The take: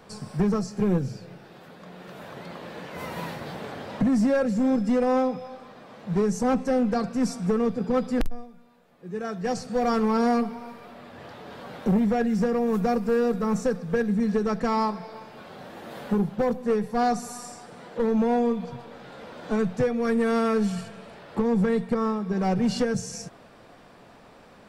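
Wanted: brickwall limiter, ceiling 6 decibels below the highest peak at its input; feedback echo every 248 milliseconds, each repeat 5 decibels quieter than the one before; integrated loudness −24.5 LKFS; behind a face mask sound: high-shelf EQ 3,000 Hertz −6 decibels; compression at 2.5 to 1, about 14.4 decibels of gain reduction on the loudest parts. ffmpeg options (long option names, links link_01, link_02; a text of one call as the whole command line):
ffmpeg -i in.wav -af "acompressor=threshold=-42dB:ratio=2.5,alimiter=level_in=8.5dB:limit=-24dB:level=0:latency=1,volume=-8.5dB,highshelf=frequency=3000:gain=-6,aecho=1:1:248|496|744|992|1240|1488|1736:0.562|0.315|0.176|0.0988|0.0553|0.031|0.0173,volume=15.5dB" out.wav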